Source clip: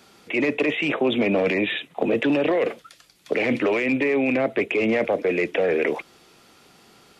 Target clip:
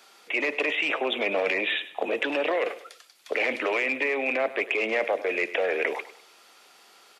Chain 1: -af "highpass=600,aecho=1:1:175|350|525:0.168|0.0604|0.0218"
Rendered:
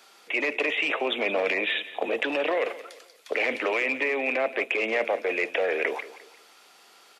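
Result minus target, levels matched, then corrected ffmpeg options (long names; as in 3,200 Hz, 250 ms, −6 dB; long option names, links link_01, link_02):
echo 74 ms late
-af "highpass=600,aecho=1:1:101|202|303:0.168|0.0604|0.0218"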